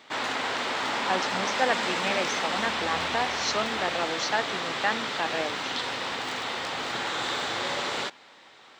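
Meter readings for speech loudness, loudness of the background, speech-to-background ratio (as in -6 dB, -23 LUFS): -31.0 LUFS, -29.0 LUFS, -2.0 dB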